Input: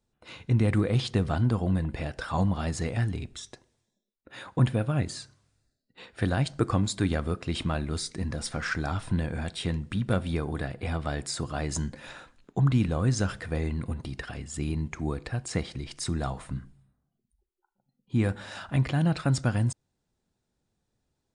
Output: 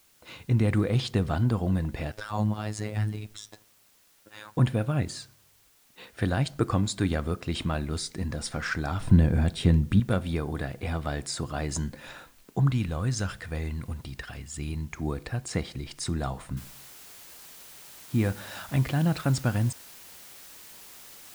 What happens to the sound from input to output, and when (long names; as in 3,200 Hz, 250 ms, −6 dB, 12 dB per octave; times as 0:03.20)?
0:02.12–0:04.55: phases set to zero 106 Hz
0:09.00–0:10.00: low-shelf EQ 430 Hz +10.5 dB
0:12.70–0:14.98: parametric band 340 Hz −6 dB 2.7 octaves
0:16.57: noise floor change −62 dB −48 dB